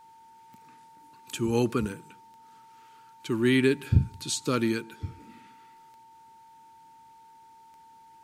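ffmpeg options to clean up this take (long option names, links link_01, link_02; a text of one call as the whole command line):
ffmpeg -i in.wav -af "adeclick=threshold=4,bandreject=frequency=900:width=30" out.wav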